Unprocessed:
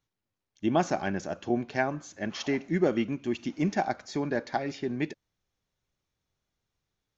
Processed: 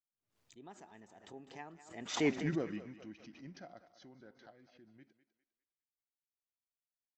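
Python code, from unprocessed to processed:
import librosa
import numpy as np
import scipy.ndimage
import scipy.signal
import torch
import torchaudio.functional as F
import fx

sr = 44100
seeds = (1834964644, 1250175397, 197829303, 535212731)

y = fx.doppler_pass(x, sr, speed_mps=38, closest_m=2.2, pass_at_s=2.31)
y = fx.echo_thinned(y, sr, ms=202, feedback_pct=36, hz=390.0, wet_db=-12.5)
y = fx.pre_swell(y, sr, db_per_s=110.0)
y = y * 10.0 ** (1.0 / 20.0)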